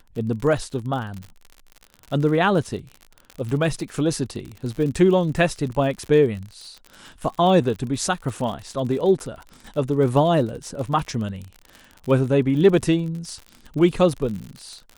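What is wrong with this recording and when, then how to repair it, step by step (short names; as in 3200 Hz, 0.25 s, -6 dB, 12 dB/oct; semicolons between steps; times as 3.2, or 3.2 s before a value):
crackle 55/s -30 dBFS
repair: de-click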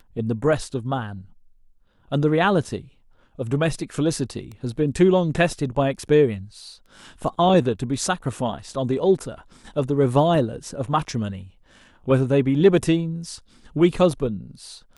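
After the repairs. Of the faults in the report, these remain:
none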